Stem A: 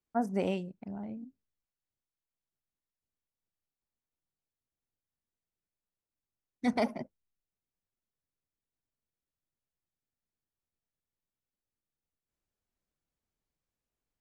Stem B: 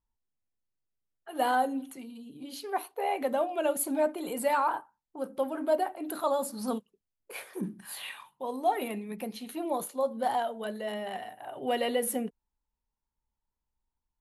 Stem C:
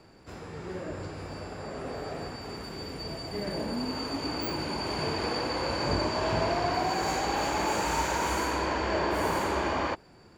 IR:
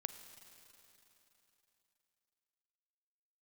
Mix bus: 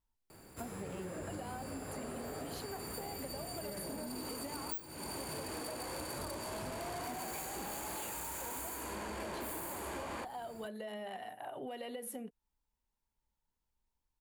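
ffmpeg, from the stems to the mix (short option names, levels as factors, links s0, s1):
-filter_complex "[0:a]acompressor=threshold=0.0316:ratio=6,adelay=450,volume=0.398[s0];[1:a]acompressor=threshold=0.0112:ratio=6,volume=1[s1];[2:a]asoftclip=type=tanh:threshold=0.0376,aexciter=amount=10:drive=5.3:freq=8000,adelay=300,volume=0.794[s2];[s0][s1][s2]amix=inputs=3:normalize=0,acompressor=threshold=0.0112:ratio=10"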